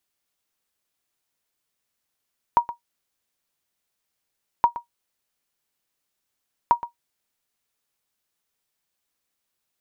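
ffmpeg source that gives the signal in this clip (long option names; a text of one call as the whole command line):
ffmpeg -f lavfi -i "aevalsrc='0.447*(sin(2*PI*949*mod(t,2.07))*exp(-6.91*mod(t,2.07)/0.12)+0.178*sin(2*PI*949*max(mod(t,2.07)-0.12,0))*exp(-6.91*max(mod(t,2.07)-0.12,0)/0.12))':duration=6.21:sample_rate=44100" out.wav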